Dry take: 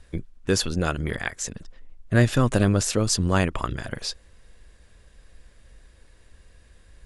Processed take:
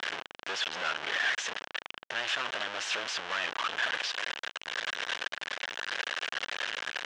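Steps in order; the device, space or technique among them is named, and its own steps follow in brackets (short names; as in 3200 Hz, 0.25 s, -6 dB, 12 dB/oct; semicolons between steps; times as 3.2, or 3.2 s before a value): home computer beeper (infinite clipping; speaker cabinet 740–5200 Hz, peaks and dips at 1600 Hz +5 dB, 3000 Hz +6 dB, 4600 Hz -5 dB); gain -2 dB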